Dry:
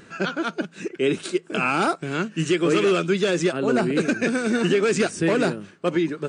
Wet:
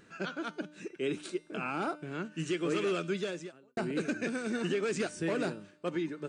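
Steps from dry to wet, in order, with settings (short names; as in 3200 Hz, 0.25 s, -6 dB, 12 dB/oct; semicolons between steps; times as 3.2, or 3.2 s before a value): 1.34–2.25 high shelf 3000 Hz -9 dB; resonator 300 Hz, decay 0.82 s, mix 60%; 3.19–3.77 fade out quadratic; gain -4 dB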